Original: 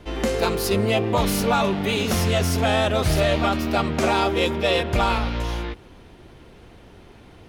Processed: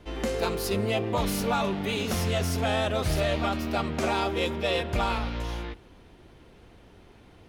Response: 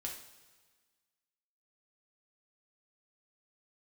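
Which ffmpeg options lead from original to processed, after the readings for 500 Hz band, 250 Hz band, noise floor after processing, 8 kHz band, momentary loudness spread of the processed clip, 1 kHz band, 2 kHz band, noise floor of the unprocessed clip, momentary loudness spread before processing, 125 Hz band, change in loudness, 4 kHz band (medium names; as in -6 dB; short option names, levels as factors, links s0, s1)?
-6.0 dB, -6.0 dB, -53 dBFS, -6.0 dB, 5 LU, -6.5 dB, -6.0 dB, -47 dBFS, 6 LU, -6.0 dB, -6.0 dB, -6.0 dB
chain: -filter_complex "[0:a]asplit=2[s0][s1];[1:a]atrim=start_sample=2205,afade=t=out:st=0.33:d=0.01,atrim=end_sample=14994[s2];[s1][s2]afir=irnorm=-1:irlink=0,volume=0.158[s3];[s0][s3]amix=inputs=2:normalize=0,volume=0.447"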